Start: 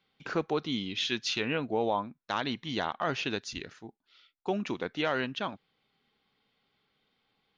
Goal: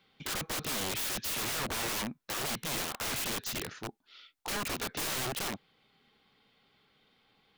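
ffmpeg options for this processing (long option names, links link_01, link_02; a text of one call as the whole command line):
ffmpeg -i in.wav -af "aeval=exprs='0.158*(cos(1*acos(clip(val(0)/0.158,-1,1)))-cos(1*PI/2))+0.00631*(cos(4*acos(clip(val(0)/0.158,-1,1)))-cos(4*PI/2))+0.0708*(cos(7*acos(clip(val(0)/0.158,-1,1)))-cos(7*PI/2))+0.00224*(cos(8*acos(clip(val(0)/0.158,-1,1)))-cos(8*PI/2))':channel_layout=same,aeval=exprs='(mod(33.5*val(0)+1,2)-1)/33.5':channel_layout=same" out.wav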